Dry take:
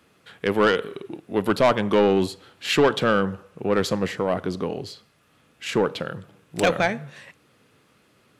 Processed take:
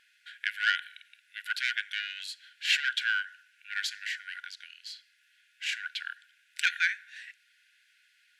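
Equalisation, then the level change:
linear-phase brick-wall high-pass 1,400 Hz
low-pass filter 4,000 Hz 6 dB per octave
+1.0 dB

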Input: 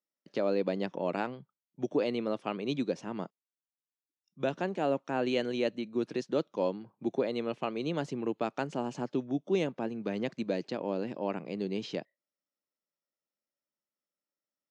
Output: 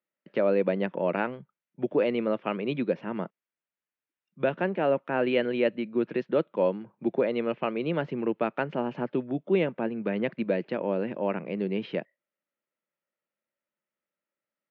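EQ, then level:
loudspeaker in its box 160–2,600 Hz, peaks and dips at 280 Hz −7 dB, 420 Hz −3 dB, 760 Hz −6 dB, 1,100 Hz −4 dB
+8.0 dB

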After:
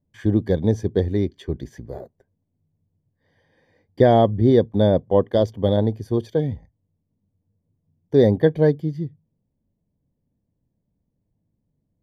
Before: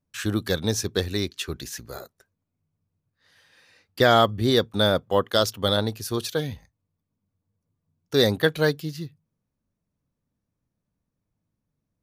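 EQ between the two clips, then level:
moving average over 33 samples
+7.0 dB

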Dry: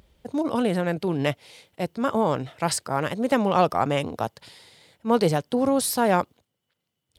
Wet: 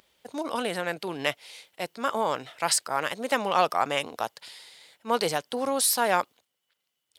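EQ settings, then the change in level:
high-pass filter 1,300 Hz 6 dB per octave
+3.5 dB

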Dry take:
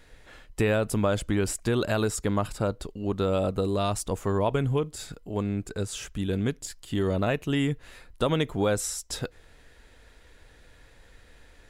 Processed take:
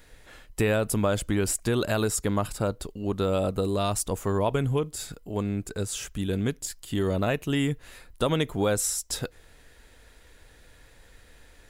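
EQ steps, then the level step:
high-shelf EQ 9,100 Hz +10.5 dB
0.0 dB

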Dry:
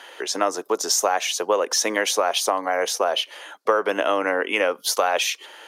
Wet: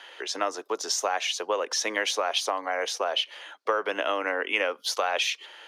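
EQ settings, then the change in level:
three-way crossover with the lows and the highs turned down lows −12 dB, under 210 Hz, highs −12 dB, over 3,800 Hz
parametric band 5,300 Hz +10 dB 2.6 octaves
−7.5 dB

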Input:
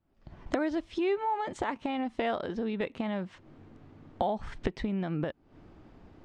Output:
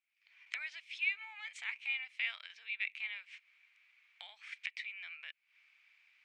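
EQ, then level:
four-pole ladder high-pass 2,200 Hz, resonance 80%
+7.5 dB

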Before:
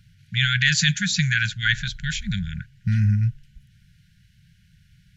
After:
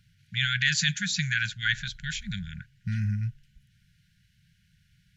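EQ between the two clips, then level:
low-shelf EQ 220 Hz −5 dB
−5.0 dB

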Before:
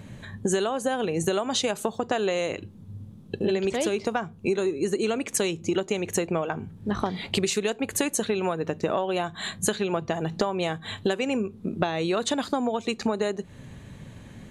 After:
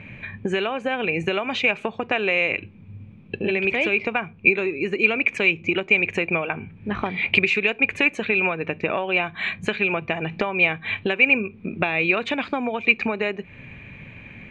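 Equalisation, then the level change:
low-pass with resonance 2,400 Hz, resonance Q 16
0.0 dB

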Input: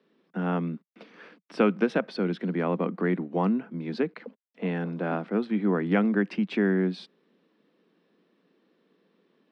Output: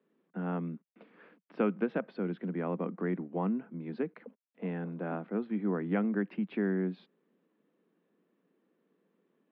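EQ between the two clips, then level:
high-frequency loss of the air 420 metres
−6.0 dB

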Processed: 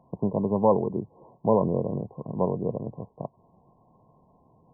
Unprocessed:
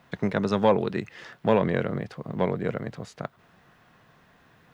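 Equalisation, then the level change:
linear-phase brick-wall low-pass 1,100 Hz
0.0 dB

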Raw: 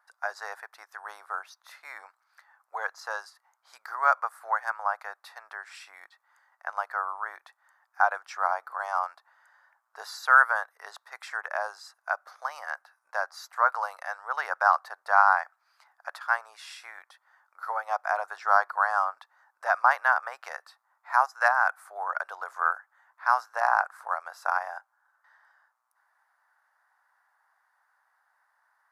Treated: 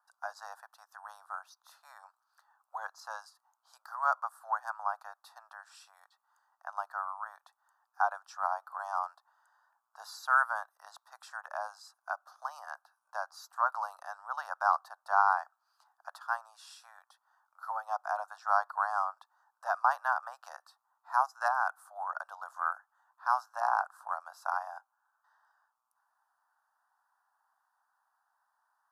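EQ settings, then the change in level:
high-pass filter 580 Hz 24 dB per octave
phaser with its sweep stopped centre 890 Hz, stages 4
−4.0 dB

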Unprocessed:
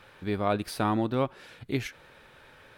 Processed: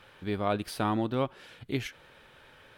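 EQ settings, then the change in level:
parametric band 3,100 Hz +5 dB 0.23 octaves
−2.0 dB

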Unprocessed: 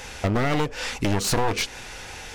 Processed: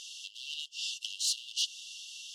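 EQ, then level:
linear-phase brick-wall high-pass 2,700 Hz
high-frequency loss of the air 52 metres
0.0 dB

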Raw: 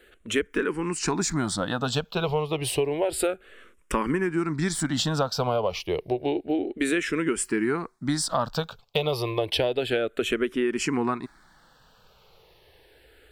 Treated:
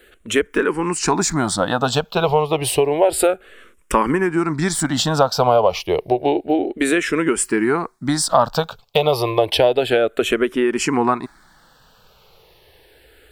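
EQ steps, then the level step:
dynamic equaliser 770 Hz, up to +8 dB, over −40 dBFS, Q 1
high-shelf EQ 7,700 Hz +5.5 dB
+5.0 dB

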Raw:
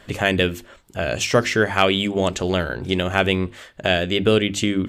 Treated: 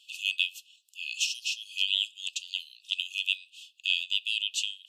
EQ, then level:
linear-phase brick-wall high-pass 2,500 Hz
high-shelf EQ 5,200 Hz −8 dB
0.0 dB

